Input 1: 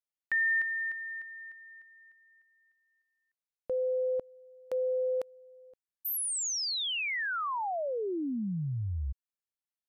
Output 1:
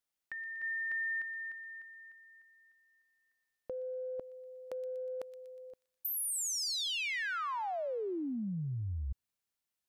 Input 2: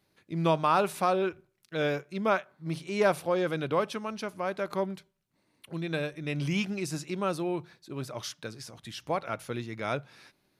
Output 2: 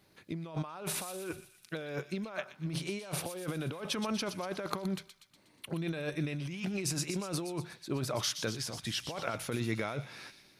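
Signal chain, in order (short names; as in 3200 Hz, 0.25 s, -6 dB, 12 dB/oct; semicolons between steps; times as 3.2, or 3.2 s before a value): negative-ratio compressor -37 dBFS, ratio -1; on a send: thin delay 0.121 s, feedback 57%, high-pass 2800 Hz, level -8 dB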